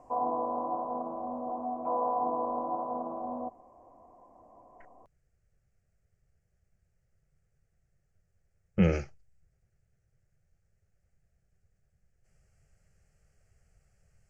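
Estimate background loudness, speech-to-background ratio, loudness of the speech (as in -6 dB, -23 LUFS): -33.5 LUFS, 4.5 dB, -29.0 LUFS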